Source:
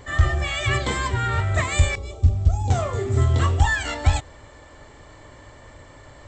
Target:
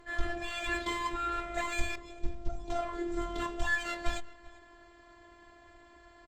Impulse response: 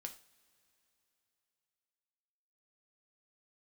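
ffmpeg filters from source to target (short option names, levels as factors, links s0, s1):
-filter_complex "[0:a]asettb=1/sr,asplit=3[s0][s1][s2];[s0]atrim=end=2.514[s3];[s1]atrim=start=2.51:end=2.99,asetpts=PTS-STARTPTS,afade=t=in:d=0.004:c=qsin,afade=t=out:st=0.476:d=0.004:c=qsin,equalizer=f=6900:w=4.1:g=-7.5[s4];[s2]atrim=start=2.986[s5];[s3][s4]acrossfade=d=0.004:c1=hsin:c2=qsin[s6];[s6][s5]acrossfade=d=0.004:c1=qsin:c2=hsin,aecho=1:1:391:0.0794,afftfilt=real='hypot(re,im)*cos(PI*b)':imag='0':win_size=512:overlap=0.75,acrossover=split=960[s7][s8];[s8]adynamicsmooth=sensitivity=6:basefreq=5900[s9];[s7][s9]amix=inputs=2:normalize=0,volume=0.531" -ar 48000 -c:a libopus -b:a 32k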